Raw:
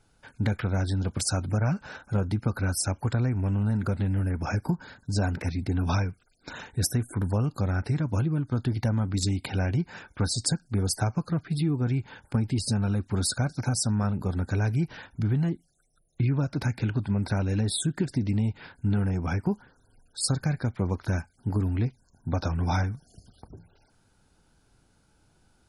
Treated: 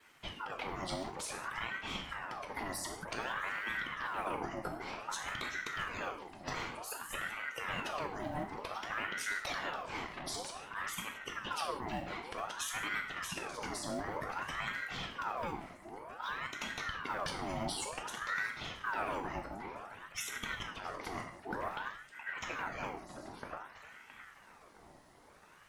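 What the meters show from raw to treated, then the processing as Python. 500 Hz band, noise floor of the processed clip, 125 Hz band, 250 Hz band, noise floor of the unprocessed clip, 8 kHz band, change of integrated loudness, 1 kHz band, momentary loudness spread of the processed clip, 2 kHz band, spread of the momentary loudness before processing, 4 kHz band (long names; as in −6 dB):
−8.0 dB, −59 dBFS, −27.0 dB, −18.0 dB, −66 dBFS, −11.0 dB, −11.5 dB, 0.0 dB, 9 LU, +1.5 dB, 5 LU, −5.5 dB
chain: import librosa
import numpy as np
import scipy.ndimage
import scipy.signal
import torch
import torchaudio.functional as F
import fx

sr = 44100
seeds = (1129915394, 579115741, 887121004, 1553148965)

y = fx.law_mismatch(x, sr, coded='mu')
y = fx.highpass(y, sr, hz=330.0, slope=6)
y = fx.high_shelf(y, sr, hz=2400.0, db=-9.0)
y = fx.hpss(y, sr, part='harmonic', gain_db=-16)
y = fx.over_compress(y, sr, threshold_db=-42.0, ratio=-1.0)
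y = fx.vibrato(y, sr, rate_hz=0.32, depth_cents=7.0)
y = fx.echo_filtered(y, sr, ms=667, feedback_pct=52, hz=1900.0, wet_db=-10.5)
y = fx.rev_gated(y, sr, seeds[0], gate_ms=210, shape='falling', drr_db=1.5)
y = fx.ring_lfo(y, sr, carrier_hz=1100.0, swing_pct=60, hz=0.54)
y = F.gain(torch.from_numpy(y), 2.5).numpy()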